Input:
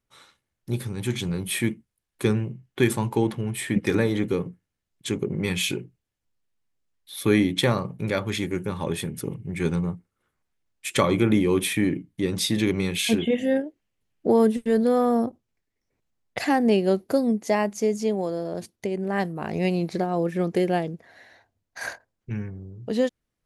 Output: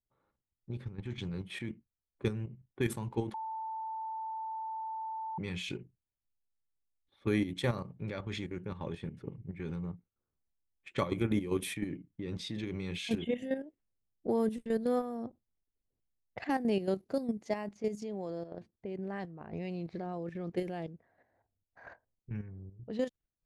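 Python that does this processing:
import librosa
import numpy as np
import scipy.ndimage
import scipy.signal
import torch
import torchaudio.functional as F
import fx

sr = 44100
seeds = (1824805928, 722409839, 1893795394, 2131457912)

y = fx.edit(x, sr, fx.bleep(start_s=3.34, length_s=2.04, hz=886.0, db=-19.5), tone=tone)
y = fx.level_steps(y, sr, step_db=10)
y = fx.env_lowpass(y, sr, base_hz=750.0, full_db=-22.5)
y = fx.low_shelf(y, sr, hz=91.0, db=8.0)
y = F.gain(torch.from_numpy(y), -9.0).numpy()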